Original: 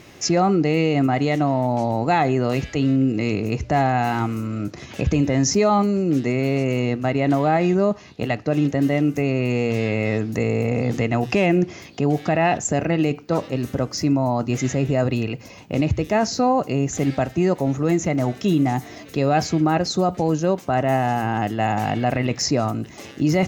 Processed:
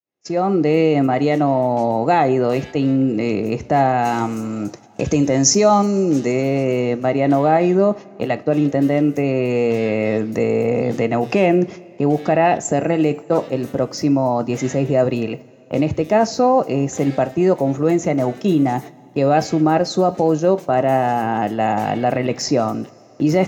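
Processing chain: opening faded in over 0.69 s; 4.05–6.43 bell 6600 Hz +11 dB 0.91 oct; gate -31 dBFS, range -29 dB; HPF 110 Hz; bell 510 Hz +7 dB 2.2 oct; two-slope reverb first 0.23 s, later 3.6 s, from -22 dB, DRR 12.5 dB; gain -1.5 dB

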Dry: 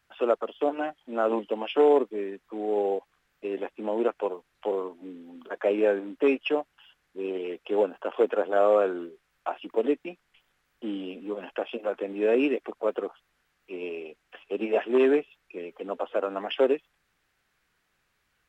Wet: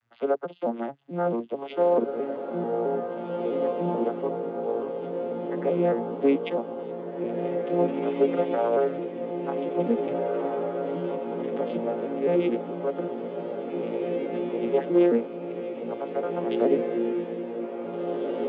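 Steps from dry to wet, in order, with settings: arpeggiated vocoder minor triad, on A#2, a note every 0.219 s; diffused feedback echo 1.919 s, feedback 57%, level -3 dB

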